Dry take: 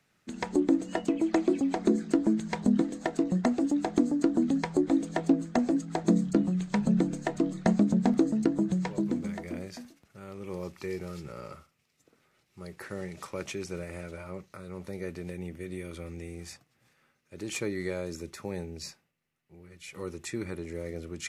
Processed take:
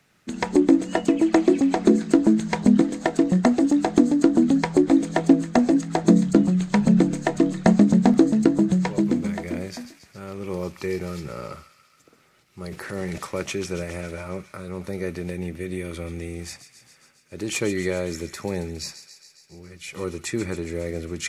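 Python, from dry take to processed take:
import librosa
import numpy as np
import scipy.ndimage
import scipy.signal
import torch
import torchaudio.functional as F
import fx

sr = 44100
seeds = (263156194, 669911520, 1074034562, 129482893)

y = fx.transient(x, sr, attack_db=-4, sustain_db=9, at=(12.63, 13.18))
y = fx.echo_wet_highpass(y, sr, ms=137, feedback_pct=70, hz=1900.0, wet_db=-11.0)
y = y * 10.0 ** (8.0 / 20.0)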